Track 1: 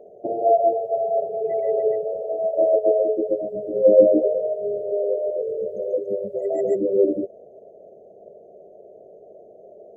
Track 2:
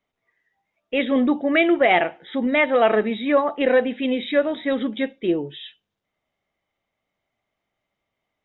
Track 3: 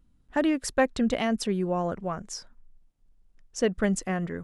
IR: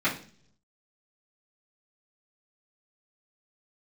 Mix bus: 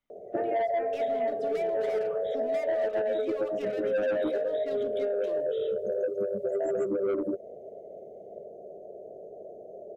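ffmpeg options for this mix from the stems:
-filter_complex "[0:a]asoftclip=type=tanh:threshold=-15dB,adelay=100,volume=1.5dB[link_01];[1:a]highshelf=frequency=2500:gain=9.5,acompressor=threshold=-16dB:ratio=3,asoftclip=type=hard:threshold=-21.5dB,volume=-14.5dB,asplit=2[link_02][link_03];[link_03]volume=-23.5dB[link_04];[2:a]acrossover=split=530 2700:gain=0.2 1 0.112[link_05][link_06][link_07];[link_05][link_06][link_07]amix=inputs=3:normalize=0,volume=-16.5dB,asplit=2[link_08][link_09];[link_09]volume=-8dB[link_10];[3:a]atrim=start_sample=2205[link_11];[link_04][link_10]amix=inputs=2:normalize=0[link_12];[link_12][link_11]afir=irnorm=-1:irlink=0[link_13];[link_01][link_02][link_08][link_13]amix=inputs=4:normalize=0,acrossover=split=97|2500[link_14][link_15][link_16];[link_14]acompressor=threshold=-60dB:ratio=4[link_17];[link_15]acompressor=threshold=-27dB:ratio=4[link_18];[link_16]acompressor=threshold=-54dB:ratio=4[link_19];[link_17][link_18][link_19]amix=inputs=3:normalize=0"

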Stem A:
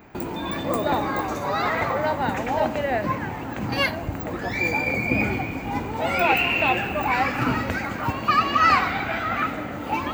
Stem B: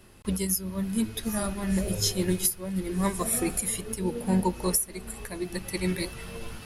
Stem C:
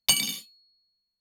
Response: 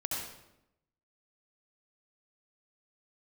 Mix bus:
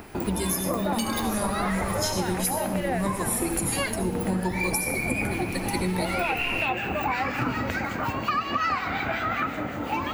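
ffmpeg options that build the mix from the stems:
-filter_complex "[0:a]acompressor=mode=upward:threshold=-41dB:ratio=2.5,acrossover=split=1600[link_01][link_02];[link_01]aeval=exprs='val(0)*(1-0.5/2+0.5/2*cos(2*PI*5.5*n/s))':channel_layout=same[link_03];[link_02]aeval=exprs='val(0)*(1-0.5/2-0.5/2*cos(2*PI*5.5*n/s))':channel_layout=same[link_04];[link_03][link_04]amix=inputs=2:normalize=0,volume=2.5dB[link_05];[1:a]volume=1dB,asplit=2[link_06][link_07];[link_07]volume=-5dB[link_08];[2:a]adelay=900,volume=-4.5dB[link_09];[3:a]atrim=start_sample=2205[link_10];[link_08][link_10]afir=irnorm=-1:irlink=0[link_11];[link_05][link_06][link_09][link_11]amix=inputs=4:normalize=0,acompressor=threshold=-23dB:ratio=6"

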